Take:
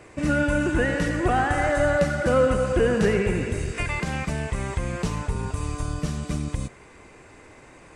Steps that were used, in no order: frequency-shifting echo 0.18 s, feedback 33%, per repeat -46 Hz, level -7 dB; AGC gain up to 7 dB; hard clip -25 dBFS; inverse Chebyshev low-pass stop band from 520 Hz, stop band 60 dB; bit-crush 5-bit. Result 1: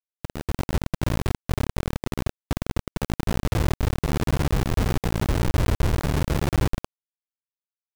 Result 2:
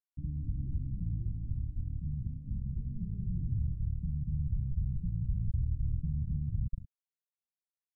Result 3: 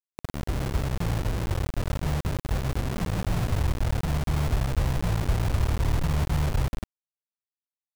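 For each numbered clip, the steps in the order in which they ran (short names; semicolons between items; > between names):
frequency-shifting echo > hard clip > inverse Chebyshev low-pass > bit-crush > AGC; frequency-shifting echo > bit-crush > AGC > hard clip > inverse Chebyshev low-pass; hard clip > inverse Chebyshev low-pass > frequency-shifting echo > AGC > bit-crush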